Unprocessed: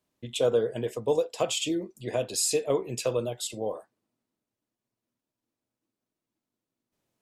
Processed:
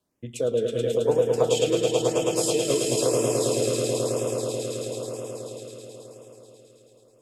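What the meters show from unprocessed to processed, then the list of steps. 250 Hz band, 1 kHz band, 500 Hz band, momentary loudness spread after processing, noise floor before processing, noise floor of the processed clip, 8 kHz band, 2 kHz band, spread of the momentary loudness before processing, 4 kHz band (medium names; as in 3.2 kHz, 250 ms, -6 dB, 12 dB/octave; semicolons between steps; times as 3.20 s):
+6.0 dB, +4.5 dB, +6.0 dB, 16 LU, under -85 dBFS, -57 dBFS, +4.0 dB, +3.5 dB, 8 LU, +3.5 dB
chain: rotary cabinet horn 0.6 Hz; echo with a slow build-up 108 ms, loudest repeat 5, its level -5 dB; LFO notch sine 1 Hz 820–4300 Hz; in parallel at -0.5 dB: compression, threshold -35 dBFS, peak gain reduction 17 dB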